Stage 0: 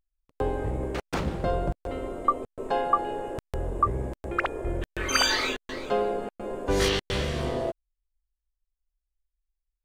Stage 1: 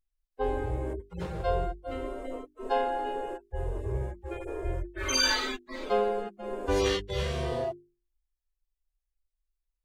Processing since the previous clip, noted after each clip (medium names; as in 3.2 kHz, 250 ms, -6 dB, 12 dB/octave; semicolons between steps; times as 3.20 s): harmonic-percussive separation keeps harmonic; hum notches 50/100/150/200/250/300/350/400 Hz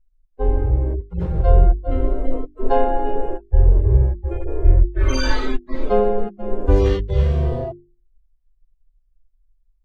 tilt EQ -4 dB/octave; gain riding 2 s; trim +2 dB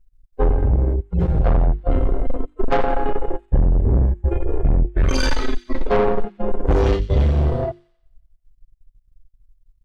saturation -19 dBFS, distortion -7 dB; transient shaper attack +3 dB, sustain -12 dB; feedback echo behind a high-pass 89 ms, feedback 50%, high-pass 3.1 kHz, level -11.5 dB; trim +6.5 dB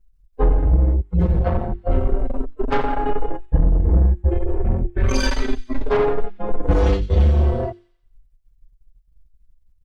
endless flanger 4.5 ms +0.34 Hz; trim +2.5 dB